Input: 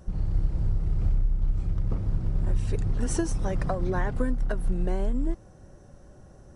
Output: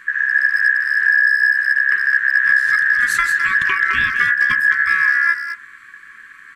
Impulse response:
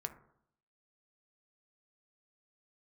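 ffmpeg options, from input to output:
-filter_complex "[0:a]aeval=exprs='val(0)*sin(2*PI*1700*n/s)':c=same,asplit=2[a][b];[b]adelay=210,highpass=300,lowpass=3.4k,asoftclip=type=hard:threshold=-23dB,volume=-7dB[c];[a][c]amix=inputs=2:normalize=0,asplit=2[d][e];[1:a]atrim=start_sample=2205[f];[e][f]afir=irnorm=-1:irlink=0,volume=1dB[g];[d][g]amix=inputs=2:normalize=0,afftfilt=real='re*(1-between(b*sr/4096,430,1000))':imag='im*(1-between(b*sr/4096,430,1000))':win_size=4096:overlap=0.75,volume=5dB"

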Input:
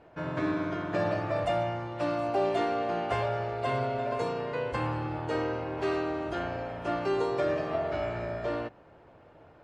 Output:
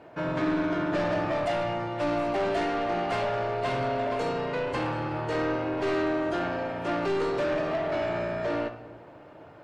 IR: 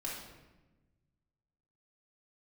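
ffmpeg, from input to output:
-filter_complex "[0:a]highpass=110,asoftclip=type=tanh:threshold=-30dB,asplit=2[a][b];[1:a]atrim=start_sample=2205[c];[b][c]afir=irnorm=-1:irlink=0,volume=-6.5dB[d];[a][d]amix=inputs=2:normalize=0,volume=4dB"

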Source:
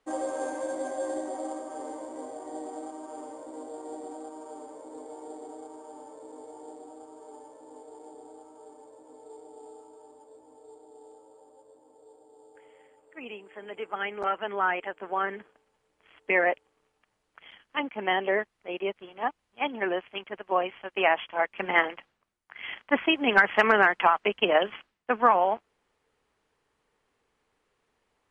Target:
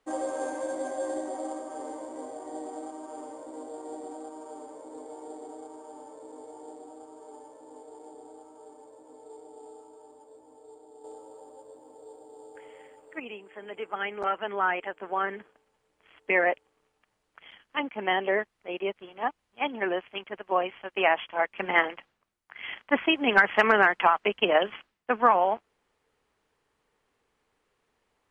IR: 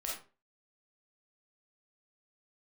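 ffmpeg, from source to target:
-filter_complex "[0:a]asettb=1/sr,asplit=3[a][b][c];[a]atrim=end=11.044[d];[b]atrim=start=11.04:end=13.2,asetpts=PTS-STARTPTS,afade=t=in:d=0.004:c=qsin,afade=t=out:st=2.156:d=0.004:c=qsin,acontrast=82[e];[c]atrim=start=13.196[f];[d][e]acrossfade=d=0.004:c1=hsin:c2=qsin[g];[g][f]acrossfade=d=0.004:c1=qsin:c2=hsin"

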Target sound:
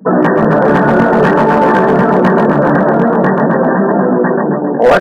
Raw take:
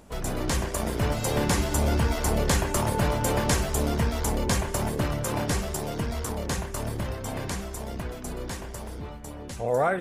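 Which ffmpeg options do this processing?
-af "afftfilt=real='re*between(b*sr/4096,150,1900)':imag='im*between(b*sr/4096,150,1900)':win_size=4096:overlap=0.75,afftdn=nr=28:nf=-41,lowshelf=f=200:g=-3,atempo=2,flanger=delay=15.5:depth=6.5:speed=0.5,acontrast=28,asoftclip=type=hard:threshold=-21.5dB,aecho=1:1:134|268|402|536|670|804:0.398|0.215|0.116|0.0627|0.0339|0.0183,alimiter=level_in=27.5dB:limit=-1dB:release=50:level=0:latency=1,volume=-1dB"

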